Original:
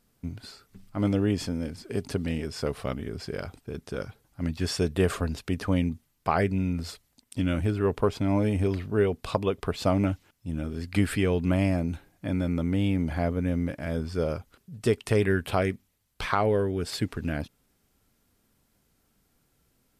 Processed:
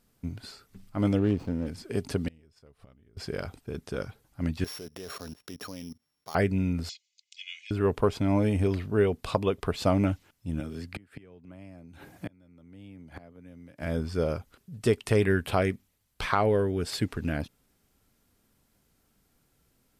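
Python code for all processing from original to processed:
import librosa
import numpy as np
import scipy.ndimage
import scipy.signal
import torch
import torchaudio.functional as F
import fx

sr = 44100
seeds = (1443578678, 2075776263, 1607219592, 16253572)

y = fx.chain(x, sr, fx.median_filter(points=25),
    fx.high_shelf(hz=5100.0, db=-7.5), at=(1.18, 1.67))
y = fx.chain(y, sr, fx.low_shelf(hz=85.0, db=11.5),
    fx.gate_flip(shuts_db=-28.0, range_db=-29), at=(2.28, 3.17))
y = fx.chain(y, sr, fx.sample_sort(block=8),
    fx.highpass(hz=300.0, slope=6),
    fx.level_steps(step_db=20), at=(4.64, 6.35))
y = fx.chain(y, sr, fx.cheby1_bandpass(low_hz=2200.0, high_hz=7000.0, order=4),
    fx.comb(ms=2.4, depth=0.62), at=(6.89, 7.71))
y = fx.chain(y, sr, fx.highpass(hz=85.0, slope=12),
    fx.gate_flip(shuts_db=-20.0, range_db=-31),
    fx.band_squash(depth_pct=70), at=(10.6, 13.82))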